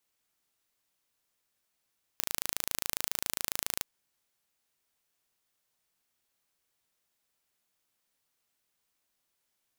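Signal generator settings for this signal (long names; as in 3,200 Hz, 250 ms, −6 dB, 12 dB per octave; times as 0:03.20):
impulse train 27.3 per second, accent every 0, −3.5 dBFS 1.63 s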